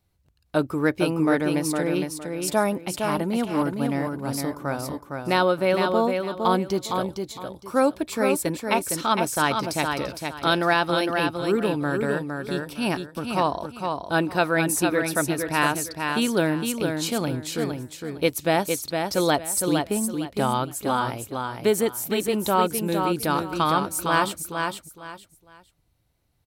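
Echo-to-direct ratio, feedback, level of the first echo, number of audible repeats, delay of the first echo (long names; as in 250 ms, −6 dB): −4.5 dB, 25%, −5.0 dB, 3, 460 ms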